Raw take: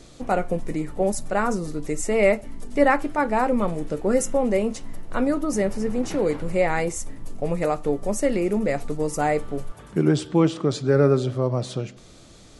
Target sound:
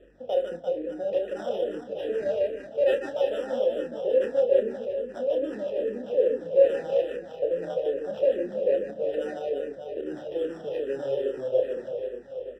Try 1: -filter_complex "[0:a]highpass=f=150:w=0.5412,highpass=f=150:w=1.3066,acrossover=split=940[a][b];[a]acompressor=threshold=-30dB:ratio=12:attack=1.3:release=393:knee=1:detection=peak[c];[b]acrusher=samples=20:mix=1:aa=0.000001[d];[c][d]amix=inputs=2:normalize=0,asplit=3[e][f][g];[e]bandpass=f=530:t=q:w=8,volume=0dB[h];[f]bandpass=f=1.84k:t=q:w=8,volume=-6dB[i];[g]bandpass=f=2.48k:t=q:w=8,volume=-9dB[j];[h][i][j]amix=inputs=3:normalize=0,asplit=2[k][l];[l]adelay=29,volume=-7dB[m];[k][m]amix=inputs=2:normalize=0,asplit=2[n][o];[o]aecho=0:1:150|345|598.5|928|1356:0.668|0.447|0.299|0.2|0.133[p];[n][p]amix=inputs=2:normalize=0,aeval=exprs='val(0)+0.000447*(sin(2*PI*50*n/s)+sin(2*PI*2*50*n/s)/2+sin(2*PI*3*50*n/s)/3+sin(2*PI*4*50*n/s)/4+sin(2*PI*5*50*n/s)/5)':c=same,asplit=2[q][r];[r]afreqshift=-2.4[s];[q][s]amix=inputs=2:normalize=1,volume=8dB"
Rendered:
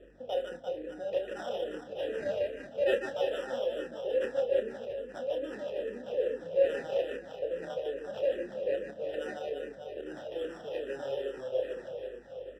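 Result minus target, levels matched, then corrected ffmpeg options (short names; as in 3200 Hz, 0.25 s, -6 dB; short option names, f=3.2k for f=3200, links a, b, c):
compressor: peak gain reduction +9.5 dB
-filter_complex "[0:a]highpass=f=150:w=0.5412,highpass=f=150:w=1.3066,acrossover=split=940[a][b];[a]acompressor=threshold=-19.5dB:ratio=12:attack=1.3:release=393:knee=1:detection=peak[c];[b]acrusher=samples=20:mix=1:aa=0.000001[d];[c][d]amix=inputs=2:normalize=0,asplit=3[e][f][g];[e]bandpass=f=530:t=q:w=8,volume=0dB[h];[f]bandpass=f=1.84k:t=q:w=8,volume=-6dB[i];[g]bandpass=f=2.48k:t=q:w=8,volume=-9dB[j];[h][i][j]amix=inputs=3:normalize=0,asplit=2[k][l];[l]adelay=29,volume=-7dB[m];[k][m]amix=inputs=2:normalize=0,asplit=2[n][o];[o]aecho=0:1:150|345|598.5|928|1356:0.668|0.447|0.299|0.2|0.133[p];[n][p]amix=inputs=2:normalize=0,aeval=exprs='val(0)+0.000447*(sin(2*PI*50*n/s)+sin(2*PI*2*50*n/s)/2+sin(2*PI*3*50*n/s)/3+sin(2*PI*4*50*n/s)/4+sin(2*PI*5*50*n/s)/5)':c=same,asplit=2[q][r];[r]afreqshift=-2.4[s];[q][s]amix=inputs=2:normalize=1,volume=8dB"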